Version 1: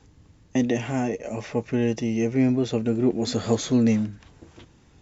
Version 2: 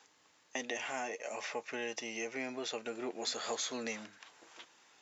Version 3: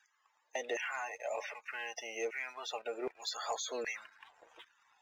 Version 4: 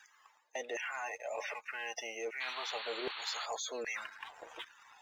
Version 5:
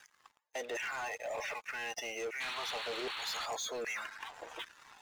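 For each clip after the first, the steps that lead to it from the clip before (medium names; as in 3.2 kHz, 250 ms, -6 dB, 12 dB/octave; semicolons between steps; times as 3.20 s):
high-pass 860 Hz 12 dB/octave; compression 2:1, threshold -39 dBFS, peak gain reduction 7 dB; trim +1 dB
loudest bins only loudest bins 64; LFO high-pass saw down 1.3 Hz 400–1700 Hz; waveshaping leveller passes 1; trim -5 dB
reverse; compression 4:1, threshold -50 dBFS, peak gain reduction 14.5 dB; reverse; painted sound noise, 2.40–3.46 s, 770–4500 Hz -54 dBFS; trim +10.5 dB
waveshaping leveller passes 3; trim -7.5 dB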